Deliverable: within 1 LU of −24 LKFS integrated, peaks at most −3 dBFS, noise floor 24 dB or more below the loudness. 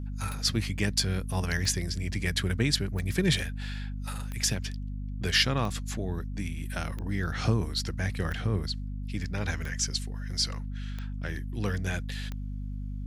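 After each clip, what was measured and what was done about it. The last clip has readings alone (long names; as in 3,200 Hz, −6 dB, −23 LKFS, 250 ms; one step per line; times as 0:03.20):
number of clicks 10; mains hum 50 Hz; hum harmonics up to 250 Hz; level of the hum −32 dBFS; integrated loudness −30.5 LKFS; sample peak −10.5 dBFS; target loudness −24.0 LKFS
→ click removal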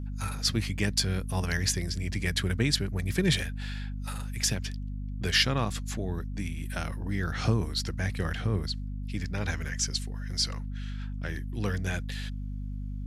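number of clicks 0; mains hum 50 Hz; hum harmonics up to 250 Hz; level of the hum −32 dBFS
→ mains-hum notches 50/100/150/200/250 Hz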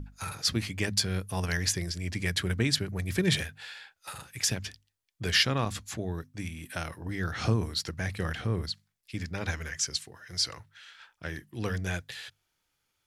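mains hum none found; integrated loudness −31.0 LKFS; sample peak −10.5 dBFS; target loudness −24.0 LKFS
→ level +7 dB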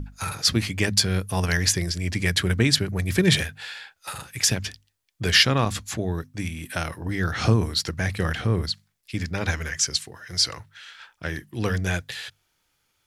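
integrated loudness −24.0 LKFS; sample peak −3.5 dBFS; background noise floor −71 dBFS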